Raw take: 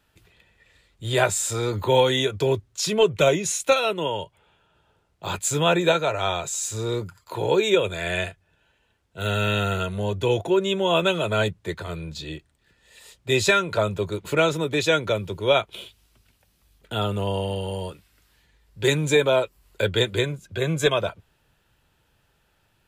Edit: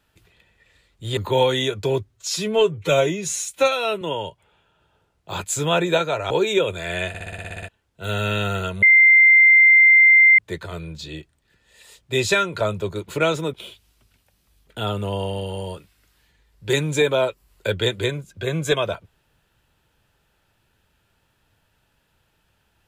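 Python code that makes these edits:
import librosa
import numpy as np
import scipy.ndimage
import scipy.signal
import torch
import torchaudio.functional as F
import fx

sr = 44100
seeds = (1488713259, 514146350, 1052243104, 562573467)

y = fx.edit(x, sr, fx.cut(start_s=1.17, length_s=0.57),
    fx.stretch_span(start_s=2.71, length_s=1.25, factor=1.5),
    fx.cut(start_s=6.25, length_s=1.22),
    fx.stutter_over(start_s=8.25, slice_s=0.06, count=10),
    fx.bleep(start_s=9.99, length_s=1.56, hz=2090.0, db=-8.5),
    fx.cut(start_s=14.7, length_s=0.98), tone=tone)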